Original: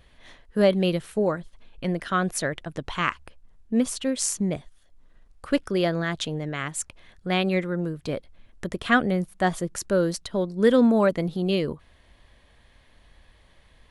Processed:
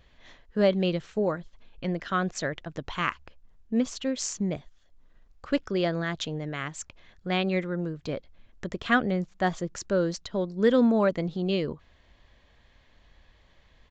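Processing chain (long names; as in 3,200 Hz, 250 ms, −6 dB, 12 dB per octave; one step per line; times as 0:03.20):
downsampling to 16,000 Hz
level −3 dB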